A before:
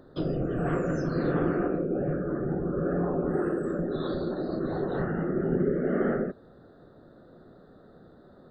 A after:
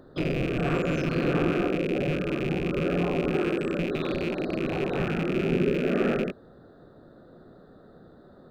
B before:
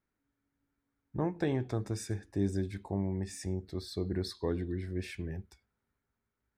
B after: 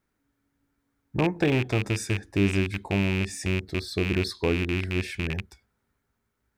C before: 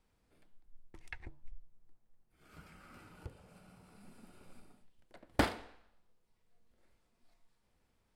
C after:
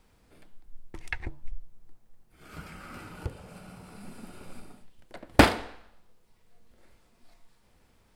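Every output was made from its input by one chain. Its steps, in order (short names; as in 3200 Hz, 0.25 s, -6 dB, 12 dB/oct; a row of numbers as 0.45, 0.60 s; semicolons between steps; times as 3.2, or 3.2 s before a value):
rattling part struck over -34 dBFS, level -26 dBFS; match loudness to -27 LUFS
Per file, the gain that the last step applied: +1.5, +8.0, +12.5 dB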